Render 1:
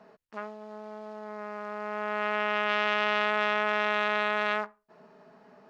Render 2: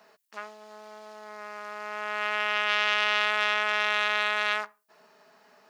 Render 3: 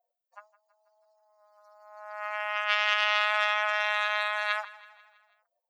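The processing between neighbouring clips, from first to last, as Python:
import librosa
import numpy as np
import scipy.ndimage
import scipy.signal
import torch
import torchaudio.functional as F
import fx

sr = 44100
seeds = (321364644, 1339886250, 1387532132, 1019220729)

y1 = fx.tilt_eq(x, sr, slope=4.5)
y1 = F.gain(torch.from_numpy(y1), -1.0).numpy()
y2 = fx.bin_expand(y1, sr, power=3.0)
y2 = fx.brickwall_highpass(y2, sr, low_hz=510.0)
y2 = fx.echo_feedback(y2, sr, ms=163, feedback_pct=55, wet_db=-19)
y2 = F.gain(torch.from_numpy(y2), 3.0).numpy()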